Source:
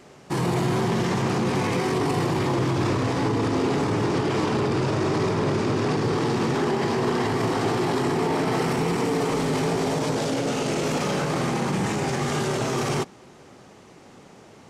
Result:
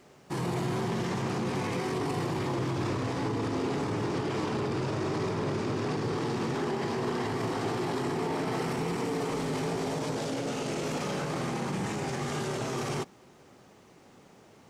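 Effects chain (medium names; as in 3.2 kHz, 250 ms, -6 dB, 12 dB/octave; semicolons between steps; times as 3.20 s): bit crusher 11-bit; trim -7.5 dB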